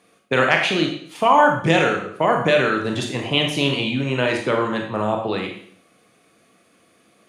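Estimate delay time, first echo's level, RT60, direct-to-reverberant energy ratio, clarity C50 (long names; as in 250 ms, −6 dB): no echo audible, no echo audible, 0.60 s, 2.0 dB, 5.0 dB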